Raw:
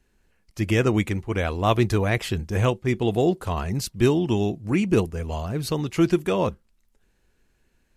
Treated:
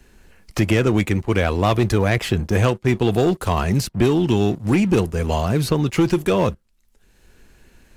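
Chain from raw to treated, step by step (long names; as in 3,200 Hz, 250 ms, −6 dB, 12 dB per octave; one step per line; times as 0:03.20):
leveller curve on the samples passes 2
multiband upward and downward compressor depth 70%
level −2 dB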